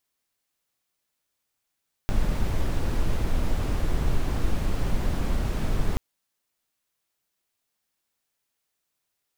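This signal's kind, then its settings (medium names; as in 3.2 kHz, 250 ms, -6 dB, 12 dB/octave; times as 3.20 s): noise brown, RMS -22.5 dBFS 3.88 s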